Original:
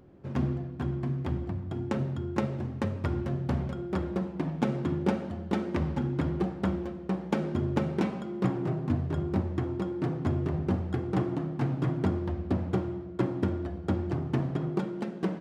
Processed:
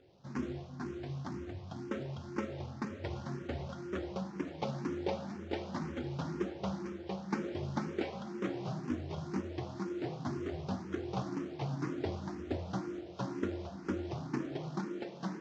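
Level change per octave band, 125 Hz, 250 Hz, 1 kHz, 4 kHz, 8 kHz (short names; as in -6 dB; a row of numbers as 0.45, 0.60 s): -11.0 dB, -8.0 dB, -5.0 dB, -1.5 dB, n/a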